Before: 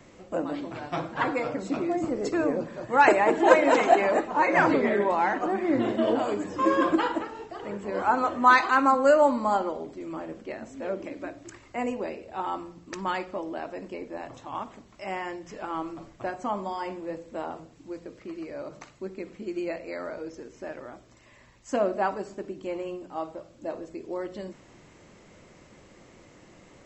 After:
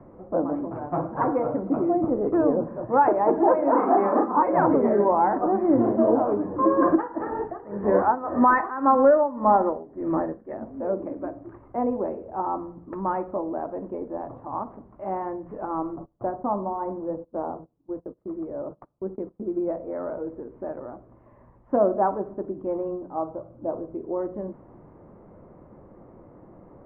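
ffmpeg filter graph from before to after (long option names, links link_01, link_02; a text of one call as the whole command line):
ffmpeg -i in.wav -filter_complex "[0:a]asettb=1/sr,asplit=3[link_01][link_02][link_03];[link_01]atrim=end=3.714[link_04];[link_02]atrim=start=3.71:end=4.43,asetpts=PTS-STARTPTS,afade=type=in:duration=0.004:curve=qsin,afade=type=out:start_time=0.716:duration=0.004:curve=qsin,highpass=220,equalizer=frequency=250:width_type=q:width=4:gain=9,equalizer=frequency=440:width_type=q:width=4:gain=-3,equalizer=frequency=650:width_type=q:width=4:gain=-8,equalizer=frequency=1200:width_type=q:width=4:gain=9,lowpass=frequency=2800:width=0.5412,lowpass=frequency=2800:width=1.3066,asplit=2[link_05][link_06];[link_06]adelay=35,volume=-2.5dB[link_07];[link_05][link_07]amix=inputs=2:normalize=0,atrim=end_sample=31752[link_08];[link_03]atrim=start=4.426[link_09];[link_04][link_08]acrossfade=duration=0.004:curve1=hsin:curve2=qsin[link_10];[link_10][link_09]acrossfade=duration=0.004:curve1=qsin:curve2=hsin,asettb=1/sr,asplit=3[link_11][link_12][link_13];[link_11]atrim=end=6.824[link_14];[link_12]atrim=start=6.82:end=10.54,asetpts=PTS-STARTPTS,afade=type=in:duration=0.004:curve=qsin,afade=type=out:start_time=3.716:duration=0.004:curve=qsin,equalizer=frequency=1800:width=4.7:gain=12.5,tremolo=f=1.8:d=0.88,acontrast=83[link_15];[link_13]atrim=start=10.536[link_16];[link_14][link_15]acrossfade=duration=0.004:curve1=hsin:curve2=qsin[link_17];[link_17][link_16]acrossfade=duration=0.004:curve1=qsin:curve2=hsin,asettb=1/sr,asplit=3[link_18][link_19][link_20];[link_18]atrim=end=15.964[link_21];[link_19]atrim=start=15.96:end=19.95,asetpts=PTS-STARTPTS,afade=type=in:duration=0.004:curve=qsin,afade=type=out:start_time=3.986:duration=0.004:curve=qsin,agate=range=-23dB:threshold=-45dB:ratio=16:release=100:detection=peak,adynamicsmooth=sensitivity=1:basefreq=1900[link_22];[link_20]atrim=start=19.946[link_23];[link_21][link_22]acrossfade=duration=0.004:curve1=hsin:curve2=qsin[link_24];[link_24][link_23]acrossfade=duration=0.004:curve1=qsin:curve2=hsin,asettb=1/sr,asplit=3[link_25][link_26][link_27];[link_25]atrim=end=23.194[link_28];[link_26]atrim=start=23.19:end=23.97,asetpts=PTS-STARTPTS,afade=type=in:duration=0.004:curve=qsin,afade=type=out:start_time=0.776:duration=0.004:curve=qsin,equalizer=frequency=120:width_type=o:width=0.39:gain=6,bandreject=frequency=1800:width=5.7[link_29];[link_27]atrim=start=23.966[link_30];[link_28][link_29]acrossfade=duration=0.004:curve1=hsin:curve2=qsin[link_31];[link_31][link_30]acrossfade=duration=0.004:curve1=qsin:curve2=hsin,lowpass=frequency=1100:width=0.5412,lowpass=frequency=1100:width=1.3066,alimiter=limit=-14dB:level=0:latency=1:release=415,volume=5dB" out.wav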